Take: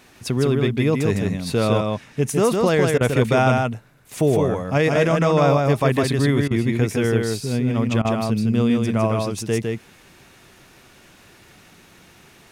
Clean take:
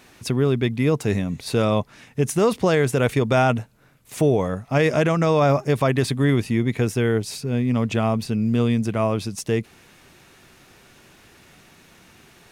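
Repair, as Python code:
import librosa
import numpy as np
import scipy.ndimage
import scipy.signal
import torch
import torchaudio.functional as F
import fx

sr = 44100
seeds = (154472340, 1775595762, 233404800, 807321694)

y = fx.fix_interpolate(x, sr, at_s=(2.98, 6.48, 8.02), length_ms=27.0)
y = fx.fix_echo_inverse(y, sr, delay_ms=156, level_db=-3.5)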